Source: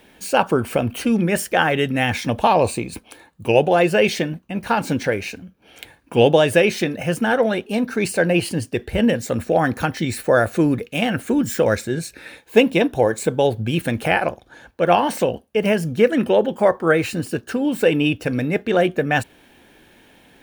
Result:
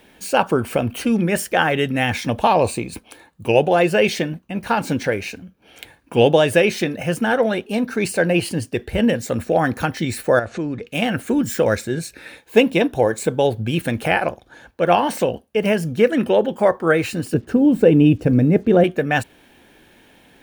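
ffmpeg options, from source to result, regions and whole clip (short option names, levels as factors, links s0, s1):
-filter_complex "[0:a]asettb=1/sr,asplit=3[s0][s1][s2];[s0]atrim=end=10.394[s3];[s1]atrim=start=10.39:end=10.87,asetpts=PTS-STARTPTS,afade=t=in:d=0.004:c=qsin,afade=t=out:st=0.476:d=0.004:c=qsin,lowpass=f=6900:w=0.5412,lowpass=f=6900:w=1.3066,acompressor=threshold=0.0447:ratio=2:attack=3.2:release=140:knee=1:detection=peak[s4];[s2]atrim=start=10.866[s5];[s3][s4]acrossfade=d=0.004:c1=hsin:c2=qsin[s6];[s6][s5]acrossfade=d=0.004:c1=qsin:c2=hsin,asettb=1/sr,asplit=3[s7][s8][s9];[s7]atrim=end=17.344[s10];[s8]atrim=start=17.34:end=18.84,asetpts=PTS-STARTPTS,afade=t=in:d=0.004:c=qsin,afade=t=out:st=1.496:d=0.004:c=qsin,tiltshelf=f=720:g=9.5,acrusher=bits=8:mix=0:aa=0.5[s11];[s9]atrim=start=18.836[s12];[s10][s11]acrossfade=d=0.004:c1=hsin:c2=qsin[s13];[s13][s12]acrossfade=d=0.004:c1=qsin:c2=hsin"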